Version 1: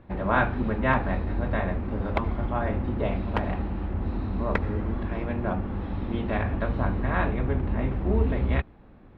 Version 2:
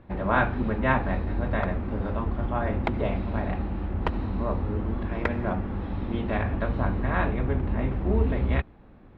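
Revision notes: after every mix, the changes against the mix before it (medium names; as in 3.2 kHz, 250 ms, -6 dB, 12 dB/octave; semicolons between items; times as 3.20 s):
background: entry +0.70 s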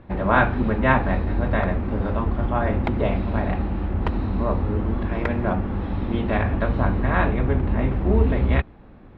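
speech +5.0 dB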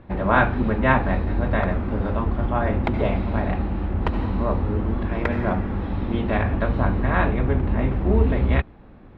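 background: send +10.5 dB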